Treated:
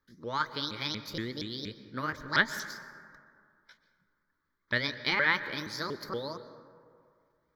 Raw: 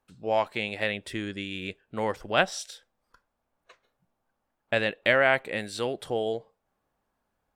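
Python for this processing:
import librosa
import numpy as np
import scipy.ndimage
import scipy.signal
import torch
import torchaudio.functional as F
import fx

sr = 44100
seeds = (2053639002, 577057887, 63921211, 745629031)

y = fx.pitch_ramps(x, sr, semitones=8.0, every_ms=236)
y = fx.peak_eq(y, sr, hz=1900.0, db=2.5, octaves=2.1)
y = fx.fixed_phaser(y, sr, hz=2700.0, stages=6)
y = fx.rev_plate(y, sr, seeds[0], rt60_s=2.2, hf_ratio=0.35, predelay_ms=110, drr_db=12.5)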